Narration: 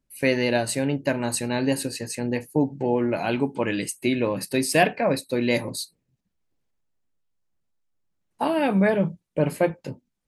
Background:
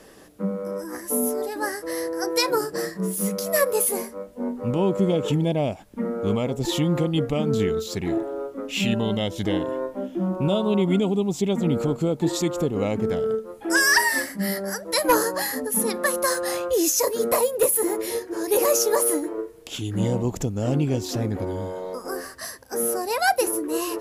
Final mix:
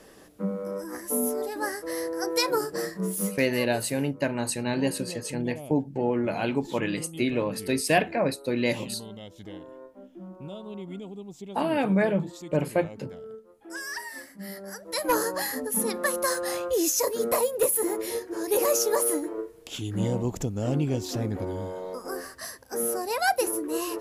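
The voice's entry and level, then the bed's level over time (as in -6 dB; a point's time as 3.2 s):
3.15 s, -3.0 dB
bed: 3.25 s -3 dB
3.46 s -17.5 dB
14.1 s -17.5 dB
15.29 s -3.5 dB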